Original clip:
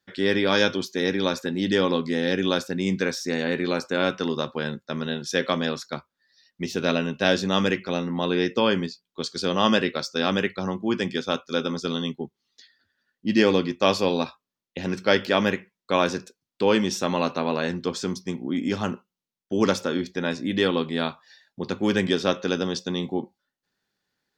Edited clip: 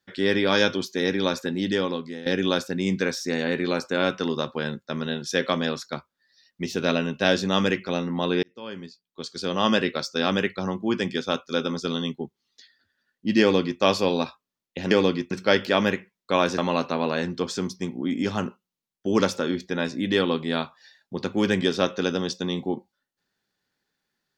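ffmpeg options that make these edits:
ffmpeg -i in.wav -filter_complex "[0:a]asplit=6[link_01][link_02][link_03][link_04][link_05][link_06];[link_01]atrim=end=2.26,asetpts=PTS-STARTPTS,afade=type=out:start_time=1.52:duration=0.74:silence=0.177828[link_07];[link_02]atrim=start=2.26:end=8.43,asetpts=PTS-STARTPTS,afade=type=in:duration=0.004:curve=hsin:silence=0.177828,afade=type=out:start_time=6.166:duration=0.004:curve=hsin[link_08];[link_03]atrim=start=8.43:end=14.912,asetpts=PTS-STARTPTS,afade=type=in:duration=1.45[link_09];[link_04]atrim=start=13.408:end=13.812[link_10];[link_05]atrim=start=14.908:end=16.182[link_11];[link_06]atrim=start=17.038[link_12];[link_07][link_08][link_09]concat=n=3:v=0:a=1[link_13];[link_13][link_10]acrossfade=duration=0.004:curve1=hsin:curve2=hsin[link_14];[link_14][link_11]acrossfade=duration=0.004:curve1=hsin:curve2=hsin[link_15];[link_15][link_12]acrossfade=duration=0.004:curve1=hsin:curve2=hsin" out.wav

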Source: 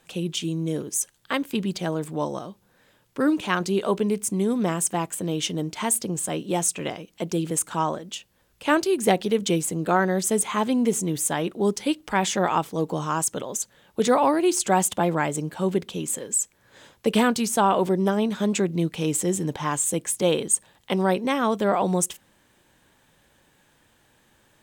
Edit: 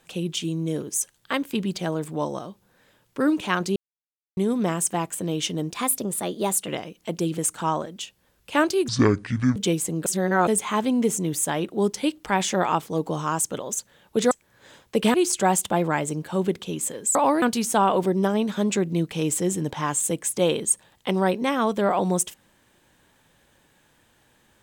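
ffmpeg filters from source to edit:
ffmpeg -i in.wav -filter_complex "[0:a]asplit=13[link_01][link_02][link_03][link_04][link_05][link_06][link_07][link_08][link_09][link_10][link_11][link_12][link_13];[link_01]atrim=end=3.76,asetpts=PTS-STARTPTS,afade=type=out:start_time=3.756:duration=0.004:curve=hsin[link_14];[link_02]atrim=start=3.76:end=4.37,asetpts=PTS-STARTPTS,volume=0[link_15];[link_03]atrim=start=4.37:end=5.704,asetpts=PTS-STARTPTS,afade=type=in:duration=0.004:curve=hsin[link_16];[link_04]atrim=start=5.7:end=6.81,asetpts=PTS-STARTPTS,asetrate=49833,aresample=44100,atrim=end_sample=43319,asetpts=PTS-STARTPTS[link_17];[link_05]atrim=start=6.806:end=9.014[link_18];[link_06]atrim=start=9.01:end=9.39,asetpts=PTS-STARTPTS,asetrate=24696,aresample=44100[link_19];[link_07]atrim=start=9.386:end=9.892[link_20];[link_08]atrim=start=9.888:end=10.302,asetpts=PTS-STARTPTS,areverse[link_21];[link_09]atrim=start=10.298:end=14.142[link_22];[link_10]atrim=start=16.418:end=17.252[link_23];[link_11]atrim=start=14.408:end=16.422[link_24];[link_12]atrim=start=14.138:end=14.412[link_25];[link_13]atrim=start=17.248[link_26];[link_14][link_15][link_16]concat=n=3:v=0:a=1[link_27];[link_27][link_17]acrossfade=duration=0.004:curve1=hsin:curve2=hsin[link_28];[link_28][link_18]acrossfade=duration=0.004:curve1=hsin:curve2=hsin[link_29];[link_29][link_19]acrossfade=duration=0.004:curve1=hsin:curve2=hsin[link_30];[link_30][link_20]acrossfade=duration=0.004:curve1=hsin:curve2=hsin[link_31];[link_31][link_21]acrossfade=duration=0.004:curve1=hsin:curve2=hsin[link_32];[link_32][link_22]acrossfade=duration=0.004:curve1=hsin:curve2=hsin[link_33];[link_33][link_23]acrossfade=duration=0.004:curve1=hsin:curve2=hsin[link_34];[link_34][link_24]acrossfade=duration=0.004:curve1=hsin:curve2=hsin[link_35];[link_35][link_25]acrossfade=duration=0.004:curve1=hsin:curve2=hsin[link_36];[link_36][link_26]acrossfade=duration=0.004:curve1=hsin:curve2=hsin" out.wav

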